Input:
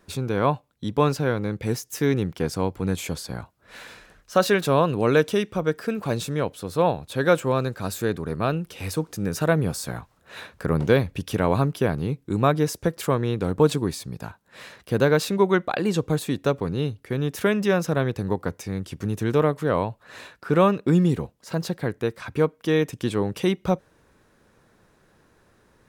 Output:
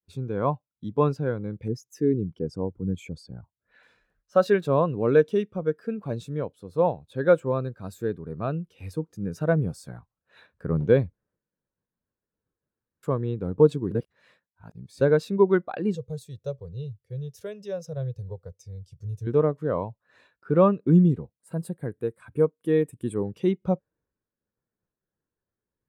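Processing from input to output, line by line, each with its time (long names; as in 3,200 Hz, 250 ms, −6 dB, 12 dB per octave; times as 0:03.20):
0:01.68–0:03.83: spectral envelope exaggerated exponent 1.5
0:11.13–0:13.03: fill with room tone
0:13.91–0:15.01: reverse
0:15.95–0:19.27: drawn EQ curve 130 Hz 0 dB, 190 Hz −12 dB, 280 Hz −20 dB, 500 Hz −2 dB, 830 Hz −9 dB, 1,400 Hz −11 dB, 2,100 Hz −9 dB, 5,400 Hz +4 dB, 10,000 Hz +1 dB
0:21.38–0:23.24: high shelf with overshoot 7,200 Hz +7.5 dB, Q 3
whole clip: downward expander −55 dBFS; every bin expanded away from the loudest bin 1.5 to 1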